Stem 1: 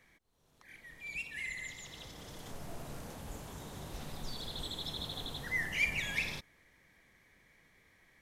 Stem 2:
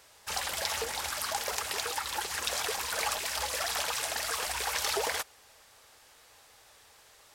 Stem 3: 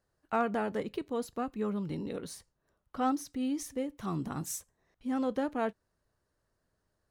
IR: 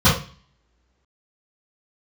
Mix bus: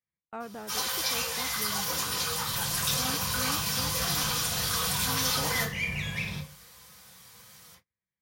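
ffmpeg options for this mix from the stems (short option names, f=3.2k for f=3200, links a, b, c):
-filter_complex "[0:a]lowshelf=f=67:g=-7.5,volume=-1dB,asplit=2[a][b];[b]volume=-22.5dB[c];[1:a]aemphasis=mode=production:type=riaa,adelay=400,volume=-10.5dB,asplit=2[d][e];[e]volume=-12.5dB[f];[2:a]volume=-9.5dB,asplit=2[g][h];[h]apad=whole_len=341628[i];[d][i]sidechaincompress=threshold=-55dB:ratio=8:attack=16:release=510[j];[3:a]atrim=start_sample=2205[k];[c][f]amix=inputs=2:normalize=0[l];[l][k]afir=irnorm=-1:irlink=0[m];[a][j][g][m]amix=inputs=4:normalize=0,agate=range=-33dB:threshold=-55dB:ratio=16:detection=peak"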